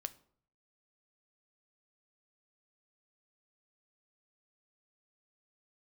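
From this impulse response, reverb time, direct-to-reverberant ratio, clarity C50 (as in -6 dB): 0.60 s, 12.0 dB, 19.0 dB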